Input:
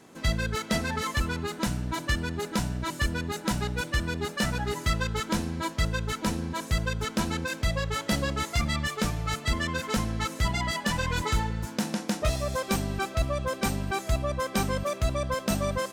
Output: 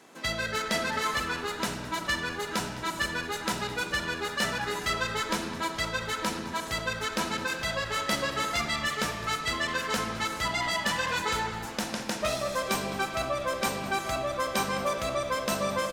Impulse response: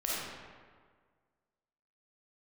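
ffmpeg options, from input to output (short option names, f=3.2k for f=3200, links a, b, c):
-filter_complex "[0:a]highpass=f=550:p=1,asplit=8[a][b][c][d][e][f][g][h];[b]adelay=210,afreqshift=-78,volume=-16.5dB[i];[c]adelay=420,afreqshift=-156,volume=-20.4dB[j];[d]adelay=630,afreqshift=-234,volume=-24.3dB[k];[e]adelay=840,afreqshift=-312,volume=-28.1dB[l];[f]adelay=1050,afreqshift=-390,volume=-32dB[m];[g]adelay=1260,afreqshift=-468,volume=-35.9dB[n];[h]adelay=1470,afreqshift=-546,volume=-39.8dB[o];[a][i][j][k][l][m][n][o]amix=inputs=8:normalize=0,asplit=2[p][q];[1:a]atrim=start_sample=2205,lowpass=6.4k[r];[q][r]afir=irnorm=-1:irlink=0,volume=-10dB[s];[p][s]amix=inputs=2:normalize=0"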